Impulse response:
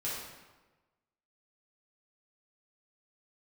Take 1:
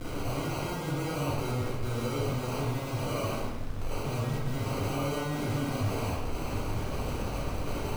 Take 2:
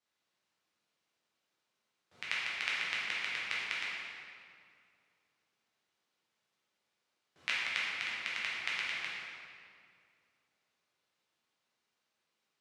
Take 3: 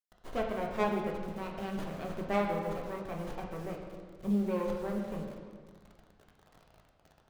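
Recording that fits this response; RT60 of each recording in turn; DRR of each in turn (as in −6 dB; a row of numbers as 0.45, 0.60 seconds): 1; 1.2, 2.3, 1.6 seconds; −8.0, −7.5, 0.0 decibels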